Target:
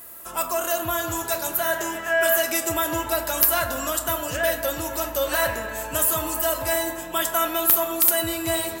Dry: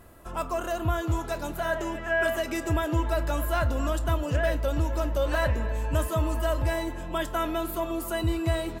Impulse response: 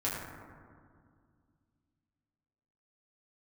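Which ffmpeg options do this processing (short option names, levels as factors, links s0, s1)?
-filter_complex "[0:a]aemphasis=mode=production:type=riaa,aeval=exprs='(mod(2.51*val(0)+1,2)-1)/2.51':c=same,asplit=2[s0][s1];[1:a]atrim=start_sample=2205,lowshelf=f=380:g=-8.5,adelay=9[s2];[s1][s2]afir=irnorm=-1:irlink=0,volume=0.282[s3];[s0][s3]amix=inputs=2:normalize=0,volume=1.41"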